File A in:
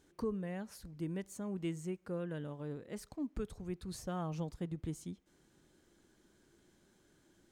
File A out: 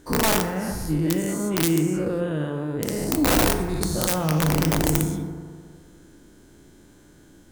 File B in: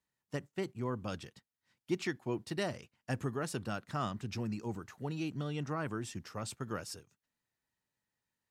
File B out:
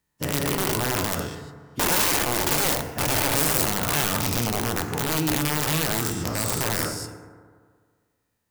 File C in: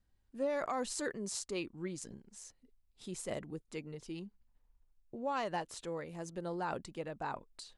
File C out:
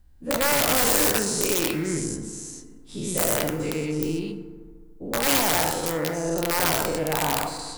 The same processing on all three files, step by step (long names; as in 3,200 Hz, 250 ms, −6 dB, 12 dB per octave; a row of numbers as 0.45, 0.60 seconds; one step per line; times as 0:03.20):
every bin's largest magnitude spread in time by 240 ms
spectral tilt −1.5 dB per octave
wrap-around overflow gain 23.5 dB
high-shelf EQ 7,700 Hz +11.5 dB
feedback delay network reverb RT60 1.8 s, low-frequency decay 0.95×, high-frequency decay 0.35×, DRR 7 dB
loudness normalisation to −23 LKFS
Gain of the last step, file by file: +8.0, +3.5, +6.0 decibels